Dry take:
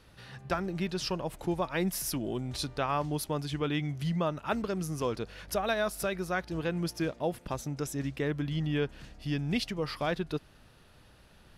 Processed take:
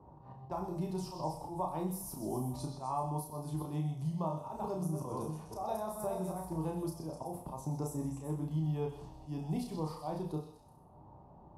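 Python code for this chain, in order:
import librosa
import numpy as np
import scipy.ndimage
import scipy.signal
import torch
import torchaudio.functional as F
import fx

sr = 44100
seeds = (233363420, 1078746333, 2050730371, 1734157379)

y = fx.reverse_delay(x, sr, ms=271, wet_db=-7, at=(4.29, 6.53))
y = scipy.signal.sosfilt(scipy.signal.butter(2, 45.0, 'highpass', fs=sr, output='sos'), y)
y = fx.env_lowpass(y, sr, base_hz=900.0, full_db=-30.0)
y = fx.curve_eq(y, sr, hz=(240.0, 520.0, 960.0, 1500.0, 3300.0, 10000.0), db=(0, -3, 9, -21, -20, 0))
y = fx.rider(y, sr, range_db=4, speed_s=0.5)
y = fx.auto_swell(y, sr, attack_ms=131.0)
y = fx.doubler(y, sr, ms=32.0, db=-4.5)
y = fx.echo_stepped(y, sr, ms=125, hz=4100.0, octaves=0.7, feedback_pct=70, wet_db=-6.0)
y = fx.rev_gated(y, sr, seeds[0], gate_ms=220, shape='falling', drr_db=4.0)
y = fx.band_squash(y, sr, depth_pct=40)
y = y * 10.0 ** (-6.5 / 20.0)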